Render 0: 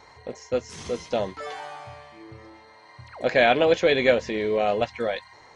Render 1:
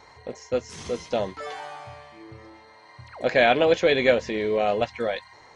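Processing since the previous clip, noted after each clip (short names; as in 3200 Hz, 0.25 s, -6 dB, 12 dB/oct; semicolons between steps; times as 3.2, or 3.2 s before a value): nothing audible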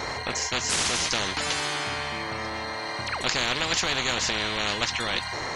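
spectral compressor 10:1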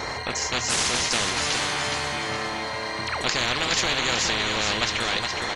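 feedback echo 0.416 s, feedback 39%, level -5 dB; gain +1 dB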